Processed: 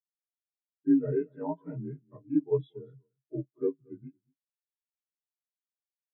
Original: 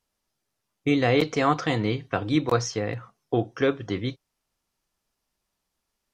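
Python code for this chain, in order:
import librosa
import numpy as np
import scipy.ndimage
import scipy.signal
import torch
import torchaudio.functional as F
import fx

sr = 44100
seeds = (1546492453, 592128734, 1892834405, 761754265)

y = fx.partial_stretch(x, sr, pct=84)
y = y + 10.0 ** (-12.0 / 20.0) * np.pad(y, (int(229 * sr / 1000.0), 0))[:len(y)]
y = fx.spectral_expand(y, sr, expansion=2.5)
y = F.gain(torch.from_numpy(y), -2.5).numpy()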